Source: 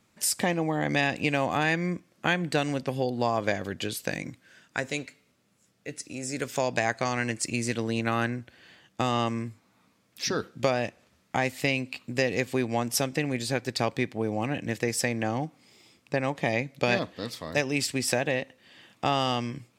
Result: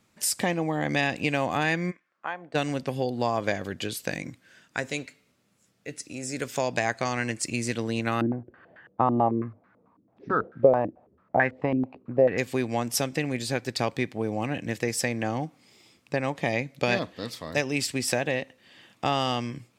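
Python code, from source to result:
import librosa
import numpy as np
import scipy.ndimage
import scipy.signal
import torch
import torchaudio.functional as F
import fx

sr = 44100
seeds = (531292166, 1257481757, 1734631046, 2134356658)

y = fx.bandpass_q(x, sr, hz=fx.line((1.9, 2200.0), (2.54, 600.0)), q=2.4, at=(1.9, 2.54), fade=0.02)
y = fx.filter_held_lowpass(y, sr, hz=9.1, low_hz=310.0, high_hz=1600.0, at=(8.21, 12.38))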